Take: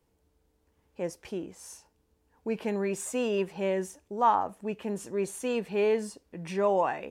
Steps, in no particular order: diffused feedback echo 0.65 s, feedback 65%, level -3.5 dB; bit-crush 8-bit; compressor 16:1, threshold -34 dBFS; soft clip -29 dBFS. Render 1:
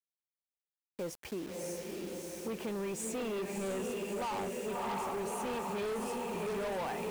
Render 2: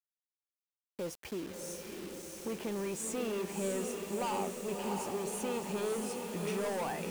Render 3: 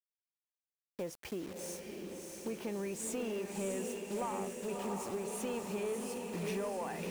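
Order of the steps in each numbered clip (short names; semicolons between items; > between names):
diffused feedback echo > soft clip > bit-crush > compressor; soft clip > compressor > diffused feedback echo > bit-crush; bit-crush > compressor > diffused feedback echo > soft clip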